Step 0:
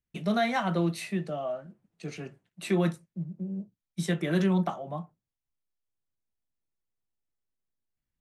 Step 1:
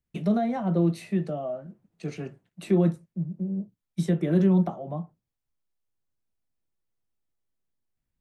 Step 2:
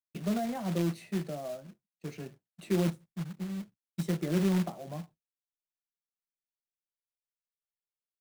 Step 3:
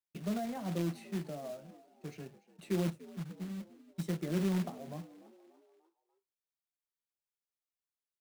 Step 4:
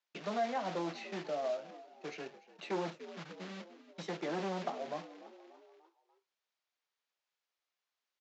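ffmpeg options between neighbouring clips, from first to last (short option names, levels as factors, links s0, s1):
-filter_complex "[0:a]tiltshelf=f=1200:g=3,acrossover=split=680[s0][s1];[s1]acompressor=threshold=0.00562:ratio=5[s2];[s0][s2]amix=inputs=2:normalize=0,volume=1.26"
-af "acrusher=bits=3:mode=log:mix=0:aa=0.000001,agate=range=0.0224:threshold=0.00891:ratio=3:detection=peak,volume=0.447"
-filter_complex "[0:a]asplit=5[s0][s1][s2][s3][s4];[s1]adelay=293,afreqshift=56,volume=0.106[s5];[s2]adelay=586,afreqshift=112,volume=0.0543[s6];[s3]adelay=879,afreqshift=168,volume=0.0275[s7];[s4]adelay=1172,afreqshift=224,volume=0.0141[s8];[s0][s5][s6][s7][s8]amix=inputs=5:normalize=0,volume=0.596"
-af "aresample=16000,asoftclip=type=tanh:threshold=0.0266,aresample=44100,highpass=510,lowpass=4800,volume=3.16"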